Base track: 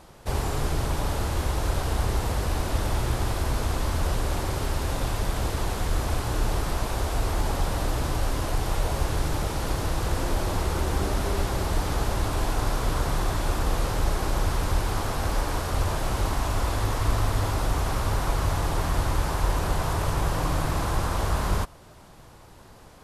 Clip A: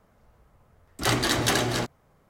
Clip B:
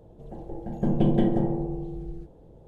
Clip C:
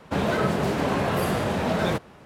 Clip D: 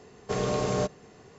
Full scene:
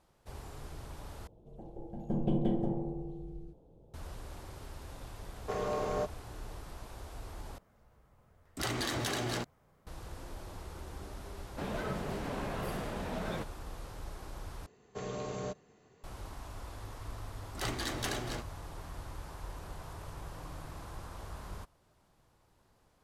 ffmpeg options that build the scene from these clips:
-filter_complex "[4:a]asplit=2[s0][s1];[1:a]asplit=2[s2][s3];[0:a]volume=0.106[s4];[2:a]equalizer=f=1800:t=o:w=0.34:g=-10[s5];[s0]equalizer=f=850:w=0.37:g=12[s6];[s2]acompressor=threshold=0.0562:ratio=6:attack=3.2:release=140:knee=1:detection=peak[s7];[s1]bandreject=f=5200:w=8.2[s8];[s4]asplit=4[s9][s10][s11][s12];[s9]atrim=end=1.274[s13];[s5]atrim=end=2.67,asetpts=PTS-STARTPTS,volume=0.376[s14];[s10]atrim=start=3.936:end=7.584[s15];[s7]atrim=end=2.29,asetpts=PTS-STARTPTS,volume=0.562[s16];[s11]atrim=start=9.866:end=14.664[s17];[s8]atrim=end=1.38,asetpts=PTS-STARTPTS,volume=0.266[s18];[s12]atrim=start=16.036[s19];[s6]atrim=end=1.38,asetpts=PTS-STARTPTS,volume=0.168,afade=t=in:d=0.004:c=hsin,afade=t=out:st=1.376:d=0.004:c=hsin,adelay=5190[s20];[3:a]atrim=end=2.25,asetpts=PTS-STARTPTS,volume=0.2,afade=t=in:d=0.004:c=hsin,afade=t=out:st=2.246:d=0.004:c=hsin,adelay=505386S[s21];[s3]atrim=end=2.29,asetpts=PTS-STARTPTS,volume=0.224,afade=t=in:d=0.004:c=hsin,afade=t=out:st=2.286:d=0.004:c=hsin,adelay=16560[s22];[s13][s14]acrossfade=d=0.004:c1=hsin:c2=hsin[s23];[s23][s15]acrossfade=d=0.004:c1=hsin:c2=hsin[s24];[s24][s16]acrossfade=d=0.004:c1=hsin:c2=hsin[s25];[s25][s17]acrossfade=d=0.004:c1=hsin:c2=hsin[s26];[s26][s18]acrossfade=d=0.004:c1=hsin:c2=hsin[s27];[s27][s19]acrossfade=d=0.004:c1=hsin:c2=hsin[s28];[s28][s20][s21][s22]amix=inputs=4:normalize=0"

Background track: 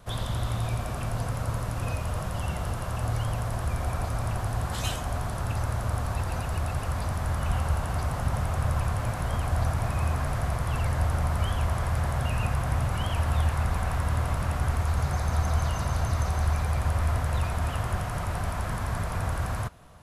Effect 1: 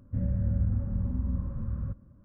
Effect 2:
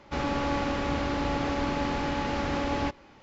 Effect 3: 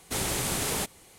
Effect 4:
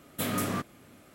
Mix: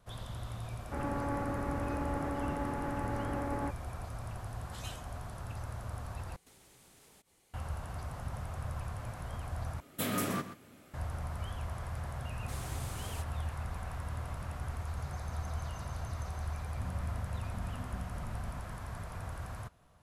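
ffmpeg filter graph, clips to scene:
-filter_complex "[3:a]asplit=2[s0][s1];[0:a]volume=0.237[s2];[2:a]lowpass=f=1800:w=0.5412,lowpass=f=1800:w=1.3066[s3];[s0]acompressor=threshold=0.00631:ratio=6:attack=3.2:release=140:knee=1:detection=peak[s4];[4:a]aecho=1:1:125:0.251[s5];[1:a]acompressor=threshold=0.0178:ratio=6:attack=3.2:release=140:knee=1:detection=peak[s6];[s2]asplit=3[s7][s8][s9];[s7]atrim=end=6.364[s10];[s4]atrim=end=1.18,asetpts=PTS-STARTPTS,volume=0.178[s11];[s8]atrim=start=7.536:end=9.804[s12];[s5]atrim=end=1.14,asetpts=PTS-STARTPTS,volume=0.708[s13];[s9]atrim=start=10.936[s14];[s3]atrim=end=3.22,asetpts=PTS-STARTPTS,volume=0.447,afade=t=in:d=0.004:c=hsin,afade=t=out:st=3.216:d=0.004:c=hsin,adelay=800[s15];[s1]atrim=end=1.18,asetpts=PTS-STARTPTS,volume=0.126,afade=t=in:d=0.004:c=hsin,afade=t=out:st=1.176:d=0.004:c=hsin,adelay=12370[s16];[s6]atrim=end=2.24,asetpts=PTS-STARTPTS,volume=0.668,afade=t=in:d=0.004:c=hsin,afade=t=out:st=2.236:d=0.004:c=hsin,adelay=16670[s17];[s10][s11]acrossfade=d=0.004:c1=hsin:c2=hsin[s18];[s18][s12]acrossfade=d=0.004:c1=hsin:c2=hsin[s19];[s19][s13]acrossfade=d=0.004:c1=hsin:c2=hsin[s20];[s20][s14]acrossfade=d=0.004:c1=hsin:c2=hsin[s21];[s21][s15][s16][s17]amix=inputs=4:normalize=0"

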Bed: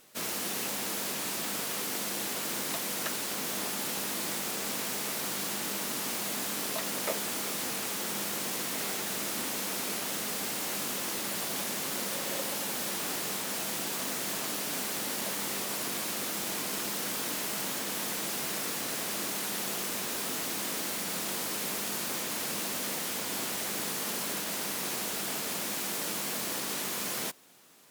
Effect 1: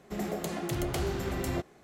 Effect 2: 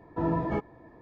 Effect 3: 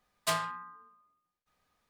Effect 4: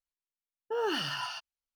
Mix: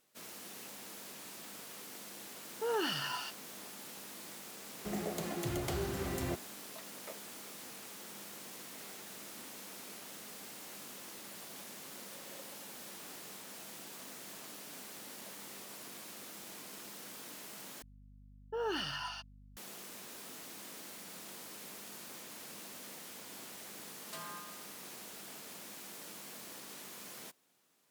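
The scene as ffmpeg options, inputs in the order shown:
-filter_complex "[4:a]asplit=2[s0][s1];[0:a]volume=0.178[s2];[s0]highpass=62[s3];[1:a]highpass=64[s4];[s1]aeval=exprs='val(0)+0.00282*(sin(2*PI*50*n/s)+sin(2*PI*2*50*n/s)/2+sin(2*PI*3*50*n/s)/3+sin(2*PI*4*50*n/s)/4+sin(2*PI*5*50*n/s)/5)':c=same[s5];[3:a]acompressor=threshold=0.02:ratio=6:attack=3.2:release=140:knee=1:detection=peak[s6];[s2]asplit=2[s7][s8];[s7]atrim=end=17.824[s9];[s5]atrim=end=1.75,asetpts=PTS-STARTPTS,volume=0.562[s10];[s8]atrim=start=19.566[s11];[s3]atrim=end=1.75,asetpts=PTS-STARTPTS,volume=0.708,afade=t=in:d=0.004:c=hsin,afade=t=out:st=1.746:d=0.004:c=hsin,adelay=1910[s12];[s4]atrim=end=1.83,asetpts=PTS-STARTPTS,volume=0.596,afade=t=in:d=0.004:c=hsin,afade=t=out:st=1.826:d=0.004:c=hsin,adelay=4740[s13];[s6]atrim=end=1.89,asetpts=PTS-STARTPTS,volume=0.376,afade=t=in:d=0.004:c=hsin,afade=t=out:st=1.886:d=0.004:c=hsin,adelay=23860[s14];[s9][s10]acrossfade=d=0.004:c1=hsin:c2=hsin[s15];[s15][s11]acrossfade=d=0.004:c1=hsin:c2=hsin[s16];[s16][s12][s13][s14]amix=inputs=4:normalize=0"

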